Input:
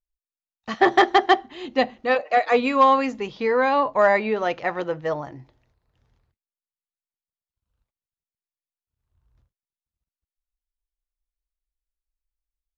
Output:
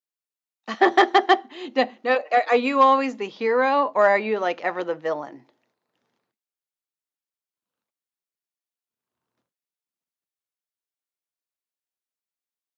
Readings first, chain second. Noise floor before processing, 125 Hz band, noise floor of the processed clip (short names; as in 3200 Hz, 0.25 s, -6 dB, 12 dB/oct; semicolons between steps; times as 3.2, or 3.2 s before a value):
under -85 dBFS, n/a, under -85 dBFS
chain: HPF 210 Hz 24 dB/oct